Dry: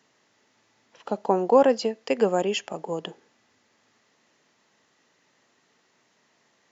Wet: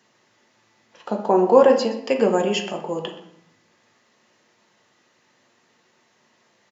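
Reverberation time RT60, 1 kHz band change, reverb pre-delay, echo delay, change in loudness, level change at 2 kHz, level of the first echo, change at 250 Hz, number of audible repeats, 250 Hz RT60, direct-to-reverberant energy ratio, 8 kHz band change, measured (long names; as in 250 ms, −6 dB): 0.75 s, +3.5 dB, 6 ms, 124 ms, +4.5 dB, +4.0 dB, −16.0 dB, +5.0 dB, 1, 0.90 s, 2.0 dB, can't be measured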